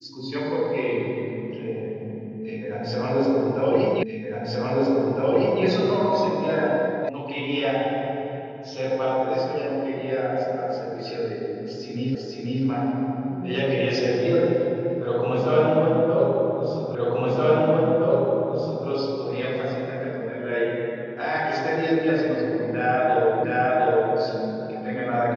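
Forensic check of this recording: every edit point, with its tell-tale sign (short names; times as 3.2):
4.03 repeat of the last 1.61 s
7.09 sound cut off
12.15 repeat of the last 0.49 s
16.95 repeat of the last 1.92 s
23.44 repeat of the last 0.71 s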